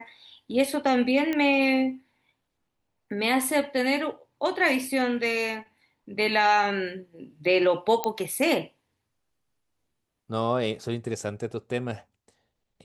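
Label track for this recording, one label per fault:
1.330000	1.330000	pop -15 dBFS
8.040000	8.040000	pop -10 dBFS

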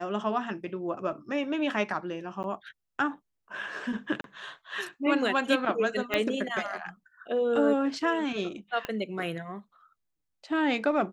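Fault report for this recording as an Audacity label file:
2.430000	2.440000	gap 9.7 ms
4.210000	4.240000	gap 32 ms
6.140000	6.140000	pop -13 dBFS
8.850000	8.850000	pop -18 dBFS

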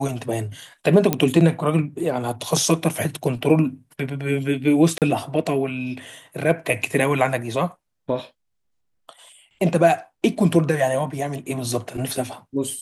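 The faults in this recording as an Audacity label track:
1.130000	1.130000	pop -4 dBFS
4.980000	5.020000	gap 38 ms

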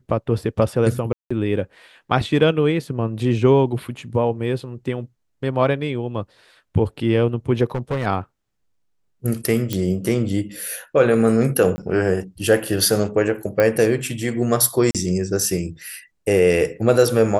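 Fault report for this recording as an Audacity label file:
1.130000	1.300000	gap 0.175 s
7.650000	8.070000	clipped -19 dBFS
9.730000	9.730000	pop -8 dBFS
11.760000	11.780000	gap 20 ms
13.600000	13.600000	pop -7 dBFS
14.910000	14.950000	gap 37 ms

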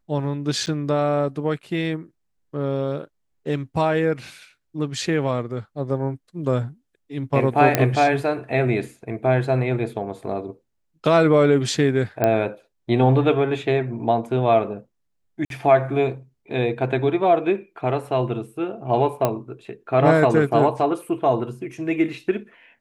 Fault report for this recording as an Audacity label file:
0.660000	0.670000	gap 9.3 ms
7.750000	7.750000	pop -2 dBFS
12.240000	12.240000	pop -7 dBFS
15.450000	15.500000	gap 52 ms
19.250000	19.250000	pop -7 dBFS

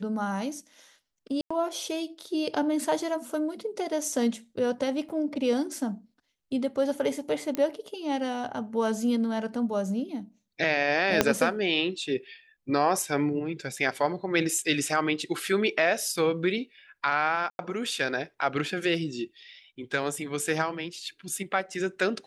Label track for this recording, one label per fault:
1.410000	1.500000	gap 95 ms
5.090000	5.100000	gap 7.1 ms
7.550000	7.550000	pop -15 dBFS
11.210000	11.210000	pop -4 dBFS
17.500000	17.590000	gap 91 ms

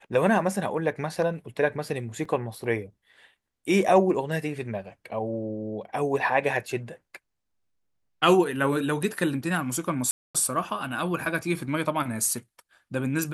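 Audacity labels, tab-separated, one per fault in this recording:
2.250000	2.250000	gap 4.2 ms
10.110000	10.350000	gap 0.236 s

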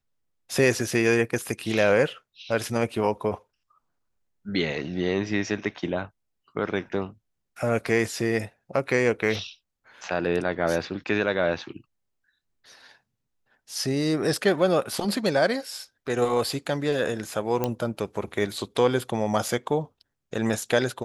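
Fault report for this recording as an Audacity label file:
17.640000	17.640000	pop -11 dBFS

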